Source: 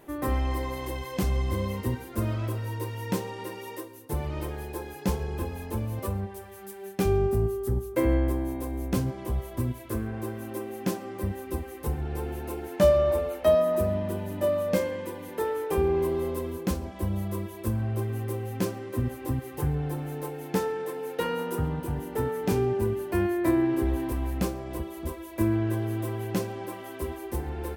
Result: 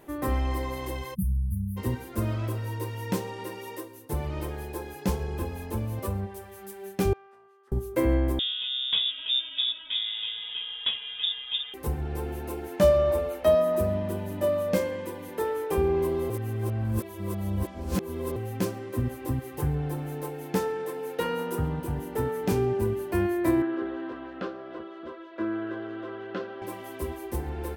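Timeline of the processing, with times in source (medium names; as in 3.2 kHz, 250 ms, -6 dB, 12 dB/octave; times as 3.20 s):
1.14–1.77 s: spectral selection erased 220–9200 Hz
7.13–7.72 s: ladder band-pass 1.7 kHz, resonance 20%
8.39–11.74 s: frequency inversion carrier 3.6 kHz
16.30–18.36 s: reverse
23.62–26.62 s: cabinet simulation 360–3500 Hz, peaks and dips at 870 Hz -9 dB, 1.4 kHz +9 dB, 2.3 kHz -9 dB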